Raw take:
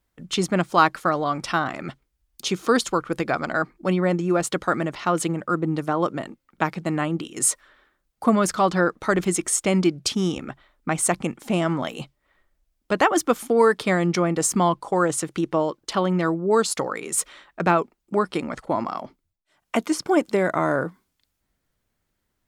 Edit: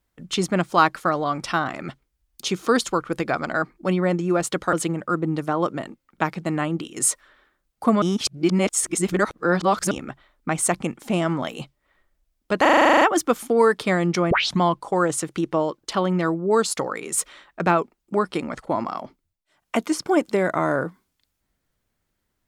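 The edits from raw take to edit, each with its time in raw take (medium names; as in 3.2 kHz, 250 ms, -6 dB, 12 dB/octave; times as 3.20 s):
4.73–5.13 s: delete
8.42–10.31 s: reverse
13.01 s: stutter 0.04 s, 11 plays
14.31 s: tape start 0.29 s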